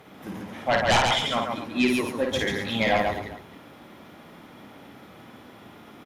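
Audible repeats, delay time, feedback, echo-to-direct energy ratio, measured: 4, 53 ms, no regular repeats, -0.5 dB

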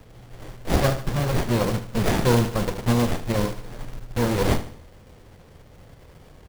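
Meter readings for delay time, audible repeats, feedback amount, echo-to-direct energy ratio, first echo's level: 75 ms, 3, 40%, -12.0 dB, -13.0 dB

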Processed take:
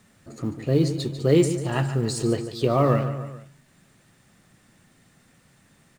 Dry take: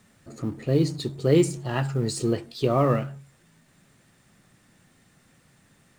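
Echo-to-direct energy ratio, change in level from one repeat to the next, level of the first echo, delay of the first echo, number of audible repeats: -10.5 dB, -5.0 dB, -12.0 dB, 145 ms, 3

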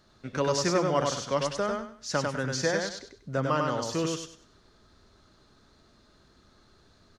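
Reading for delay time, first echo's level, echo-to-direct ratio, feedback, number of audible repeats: 98 ms, -3.5 dB, -3.0 dB, 27%, 3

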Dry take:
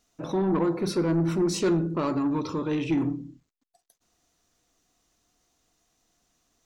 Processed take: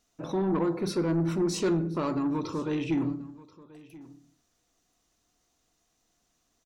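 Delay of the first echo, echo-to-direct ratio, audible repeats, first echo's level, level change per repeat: 1033 ms, -20.5 dB, 1, -20.5 dB, no regular repeats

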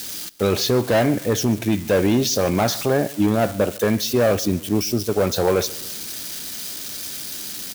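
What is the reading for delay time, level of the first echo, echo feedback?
140 ms, -22.0 dB, 46%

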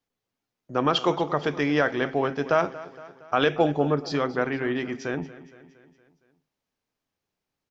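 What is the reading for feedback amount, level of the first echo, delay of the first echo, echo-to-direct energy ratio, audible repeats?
56%, -17.5 dB, 232 ms, -16.0 dB, 4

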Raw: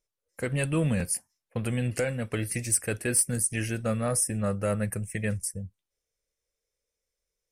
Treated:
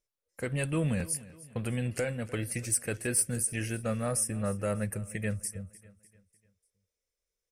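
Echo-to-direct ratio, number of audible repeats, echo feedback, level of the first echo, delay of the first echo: -18.0 dB, 3, 45%, -19.0 dB, 298 ms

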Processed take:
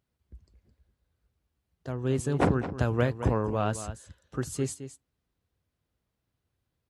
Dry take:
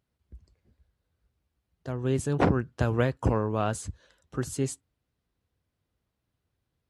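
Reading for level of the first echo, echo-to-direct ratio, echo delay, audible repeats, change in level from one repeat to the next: -12.0 dB, -12.0 dB, 215 ms, 1, no regular repeats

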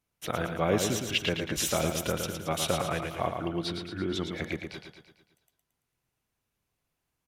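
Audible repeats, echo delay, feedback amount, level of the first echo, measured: 6, 112 ms, 53%, -6.0 dB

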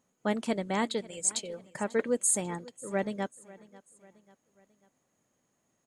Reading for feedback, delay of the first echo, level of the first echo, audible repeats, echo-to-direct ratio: 47%, 542 ms, -21.0 dB, 3, -20.0 dB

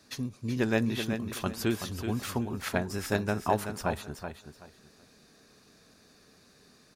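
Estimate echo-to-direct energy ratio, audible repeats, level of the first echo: -8.0 dB, 3, -8.0 dB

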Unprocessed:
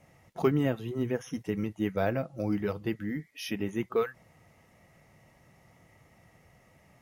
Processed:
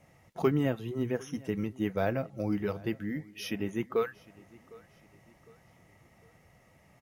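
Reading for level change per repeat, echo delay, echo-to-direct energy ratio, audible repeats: -7.5 dB, 756 ms, -22.0 dB, 2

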